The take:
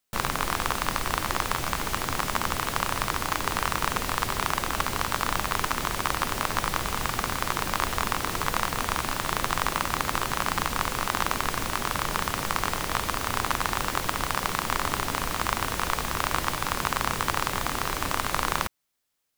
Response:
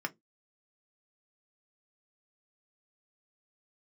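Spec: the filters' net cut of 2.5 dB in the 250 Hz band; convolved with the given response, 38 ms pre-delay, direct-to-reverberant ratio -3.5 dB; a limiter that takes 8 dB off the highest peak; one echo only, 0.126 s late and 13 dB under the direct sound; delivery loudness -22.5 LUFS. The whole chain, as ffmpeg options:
-filter_complex "[0:a]equalizer=f=250:t=o:g=-3.5,alimiter=limit=-12.5dB:level=0:latency=1,aecho=1:1:126:0.224,asplit=2[a][b];[1:a]atrim=start_sample=2205,adelay=38[c];[b][c]afir=irnorm=-1:irlink=0,volume=0dB[d];[a][d]amix=inputs=2:normalize=0,volume=3dB"

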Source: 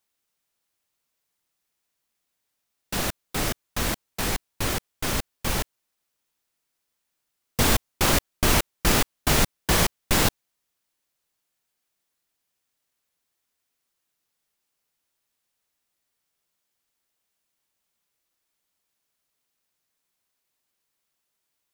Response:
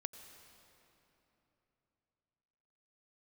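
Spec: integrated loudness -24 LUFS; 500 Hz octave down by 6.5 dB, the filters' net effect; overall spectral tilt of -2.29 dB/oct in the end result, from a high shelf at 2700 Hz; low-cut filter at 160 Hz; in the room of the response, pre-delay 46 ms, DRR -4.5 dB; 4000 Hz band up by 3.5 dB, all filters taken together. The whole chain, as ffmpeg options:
-filter_complex "[0:a]highpass=160,equalizer=f=500:t=o:g=-8.5,highshelf=f=2.7k:g=-3,equalizer=f=4k:t=o:g=7,asplit=2[a][b];[1:a]atrim=start_sample=2205,adelay=46[c];[b][c]afir=irnorm=-1:irlink=0,volume=7dB[d];[a][d]amix=inputs=2:normalize=0,volume=-4.5dB"

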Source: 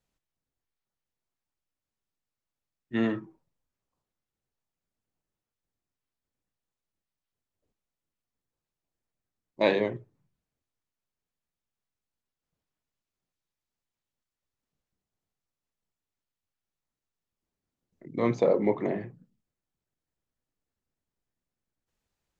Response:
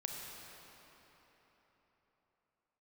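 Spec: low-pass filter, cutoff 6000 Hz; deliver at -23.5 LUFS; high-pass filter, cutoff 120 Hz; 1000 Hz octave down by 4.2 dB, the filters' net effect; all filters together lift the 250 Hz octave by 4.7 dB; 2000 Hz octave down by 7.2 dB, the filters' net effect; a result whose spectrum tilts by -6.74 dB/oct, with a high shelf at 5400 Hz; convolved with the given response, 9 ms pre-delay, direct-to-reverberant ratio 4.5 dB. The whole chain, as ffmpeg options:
-filter_complex "[0:a]highpass=120,lowpass=6k,equalizer=f=250:t=o:g=6.5,equalizer=f=1k:t=o:g=-4.5,equalizer=f=2k:t=o:g=-8,highshelf=f=5.4k:g=3.5,asplit=2[a][b];[1:a]atrim=start_sample=2205,adelay=9[c];[b][c]afir=irnorm=-1:irlink=0,volume=-5dB[d];[a][d]amix=inputs=2:normalize=0,volume=3dB"

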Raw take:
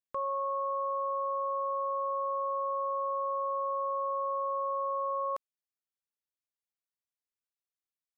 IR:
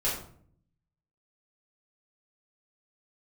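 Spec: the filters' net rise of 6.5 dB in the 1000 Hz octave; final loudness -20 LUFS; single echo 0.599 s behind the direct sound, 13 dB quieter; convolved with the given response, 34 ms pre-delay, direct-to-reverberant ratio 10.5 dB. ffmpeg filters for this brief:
-filter_complex "[0:a]equalizer=f=1k:t=o:g=7,aecho=1:1:599:0.224,asplit=2[a][b];[1:a]atrim=start_sample=2205,adelay=34[c];[b][c]afir=irnorm=-1:irlink=0,volume=-19dB[d];[a][d]amix=inputs=2:normalize=0,volume=6.5dB"

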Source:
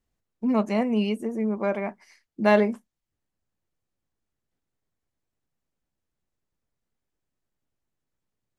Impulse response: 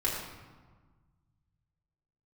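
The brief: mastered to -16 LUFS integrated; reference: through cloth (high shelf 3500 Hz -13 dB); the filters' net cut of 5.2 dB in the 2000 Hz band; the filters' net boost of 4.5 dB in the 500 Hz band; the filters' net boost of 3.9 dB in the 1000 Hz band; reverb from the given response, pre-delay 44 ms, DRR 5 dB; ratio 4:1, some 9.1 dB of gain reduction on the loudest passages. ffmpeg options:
-filter_complex "[0:a]equalizer=f=500:t=o:g=5,equalizer=f=1k:t=o:g=5,equalizer=f=2k:t=o:g=-5,acompressor=threshold=-21dB:ratio=4,asplit=2[a][b];[1:a]atrim=start_sample=2205,adelay=44[c];[b][c]afir=irnorm=-1:irlink=0,volume=-12.5dB[d];[a][d]amix=inputs=2:normalize=0,highshelf=f=3.5k:g=-13,volume=10dB"

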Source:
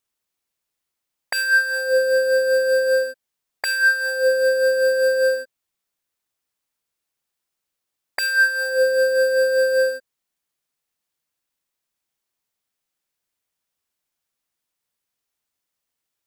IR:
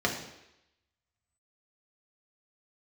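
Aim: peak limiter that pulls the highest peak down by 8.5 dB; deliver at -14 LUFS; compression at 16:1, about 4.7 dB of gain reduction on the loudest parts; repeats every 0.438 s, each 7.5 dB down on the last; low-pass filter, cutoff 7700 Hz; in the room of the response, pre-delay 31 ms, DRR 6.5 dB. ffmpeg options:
-filter_complex "[0:a]lowpass=7.7k,acompressor=threshold=-18dB:ratio=16,alimiter=limit=-18dB:level=0:latency=1,aecho=1:1:438|876|1314|1752|2190:0.422|0.177|0.0744|0.0312|0.0131,asplit=2[a][b];[1:a]atrim=start_sample=2205,adelay=31[c];[b][c]afir=irnorm=-1:irlink=0,volume=-17.5dB[d];[a][d]amix=inputs=2:normalize=0,volume=6.5dB"

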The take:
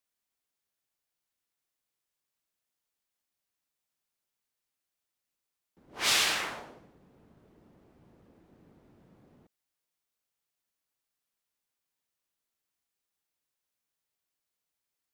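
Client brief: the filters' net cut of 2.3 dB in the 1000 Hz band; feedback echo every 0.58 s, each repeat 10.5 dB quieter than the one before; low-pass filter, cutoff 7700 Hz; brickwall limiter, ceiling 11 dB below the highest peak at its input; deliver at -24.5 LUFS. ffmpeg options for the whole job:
-af "lowpass=7.7k,equalizer=f=1k:t=o:g=-3,alimiter=level_in=1.5dB:limit=-24dB:level=0:latency=1,volume=-1.5dB,aecho=1:1:580|1160|1740:0.299|0.0896|0.0269,volume=12.5dB"

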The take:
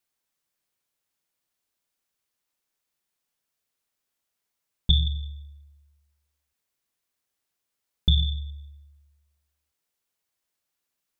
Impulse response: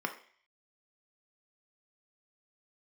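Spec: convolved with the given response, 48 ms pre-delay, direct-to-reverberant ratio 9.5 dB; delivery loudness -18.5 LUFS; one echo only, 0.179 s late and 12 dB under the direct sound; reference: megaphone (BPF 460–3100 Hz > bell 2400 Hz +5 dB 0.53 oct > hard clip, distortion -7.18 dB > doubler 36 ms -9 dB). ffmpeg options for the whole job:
-filter_complex "[0:a]aecho=1:1:179:0.251,asplit=2[a][b];[1:a]atrim=start_sample=2205,adelay=48[c];[b][c]afir=irnorm=-1:irlink=0,volume=-14.5dB[d];[a][d]amix=inputs=2:normalize=0,highpass=460,lowpass=3.1k,equalizer=f=2.4k:t=o:w=0.53:g=5,asoftclip=type=hard:threshold=-27.5dB,asplit=2[e][f];[f]adelay=36,volume=-9dB[g];[e][g]amix=inputs=2:normalize=0,volume=16dB"

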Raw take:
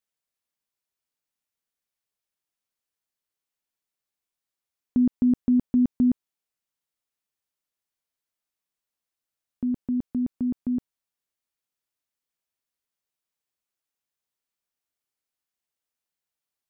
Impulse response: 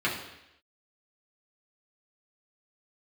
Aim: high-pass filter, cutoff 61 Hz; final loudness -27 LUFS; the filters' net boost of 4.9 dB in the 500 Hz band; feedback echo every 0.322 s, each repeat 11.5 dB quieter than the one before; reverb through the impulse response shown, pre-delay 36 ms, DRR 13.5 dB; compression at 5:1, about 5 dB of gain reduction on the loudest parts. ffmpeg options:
-filter_complex "[0:a]highpass=61,equalizer=f=500:t=o:g=7,acompressor=threshold=-21dB:ratio=5,aecho=1:1:322|644|966:0.266|0.0718|0.0194,asplit=2[a][b];[1:a]atrim=start_sample=2205,adelay=36[c];[b][c]afir=irnorm=-1:irlink=0,volume=-25dB[d];[a][d]amix=inputs=2:normalize=0,volume=1dB"

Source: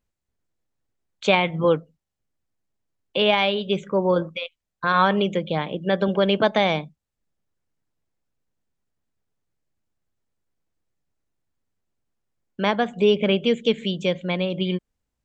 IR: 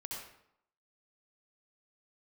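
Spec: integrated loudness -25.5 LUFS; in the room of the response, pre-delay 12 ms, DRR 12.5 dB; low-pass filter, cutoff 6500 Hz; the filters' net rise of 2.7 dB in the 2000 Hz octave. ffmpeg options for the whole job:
-filter_complex "[0:a]lowpass=6.5k,equalizer=f=2k:t=o:g=3.5,asplit=2[a][b];[1:a]atrim=start_sample=2205,adelay=12[c];[b][c]afir=irnorm=-1:irlink=0,volume=-11.5dB[d];[a][d]amix=inputs=2:normalize=0,volume=-4dB"

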